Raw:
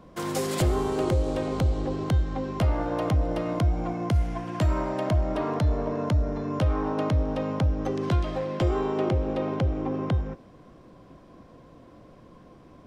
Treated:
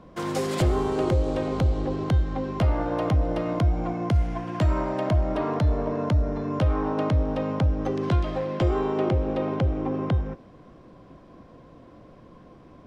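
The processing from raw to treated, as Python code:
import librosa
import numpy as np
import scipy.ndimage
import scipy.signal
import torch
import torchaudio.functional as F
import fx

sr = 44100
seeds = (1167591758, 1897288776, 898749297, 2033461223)

y = fx.high_shelf(x, sr, hz=8100.0, db=-11.5)
y = F.gain(torch.from_numpy(y), 1.5).numpy()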